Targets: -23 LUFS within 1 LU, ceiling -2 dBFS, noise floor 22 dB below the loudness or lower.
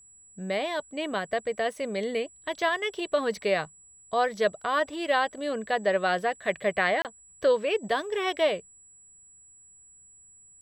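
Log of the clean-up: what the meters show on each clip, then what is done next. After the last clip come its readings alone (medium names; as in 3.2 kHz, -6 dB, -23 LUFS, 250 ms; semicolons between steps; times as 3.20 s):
dropouts 1; longest dropout 28 ms; steady tone 7.8 kHz; tone level -52 dBFS; loudness -28.0 LUFS; peak level -11.0 dBFS; loudness target -23.0 LUFS
-> interpolate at 7.02 s, 28 ms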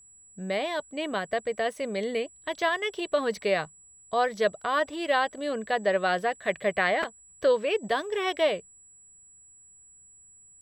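dropouts 0; steady tone 7.8 kHz; tone level -52 dBFS
-> band-stop 7.8 kHz, Q 30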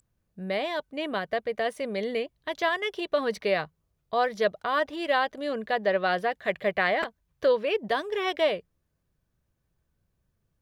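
steady tone not found; loudness -28.0 LUFS; peak level -11.0 dBFS; loudness target -23.0 LUFS
-> trim +5 dB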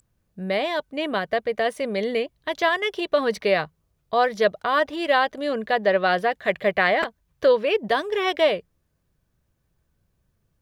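loudness -23.0 LUFS; peak level -6.0 dBFS; noise floor -72 dBFS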